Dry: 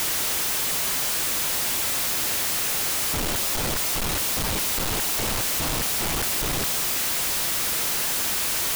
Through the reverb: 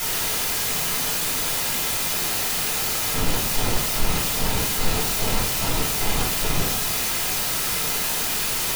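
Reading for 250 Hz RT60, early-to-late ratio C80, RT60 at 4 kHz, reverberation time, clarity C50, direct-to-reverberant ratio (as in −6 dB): 0.75 s, 9.0 dB, 0.45 s, 0.55 s, 4.5 dB, −6.0 dB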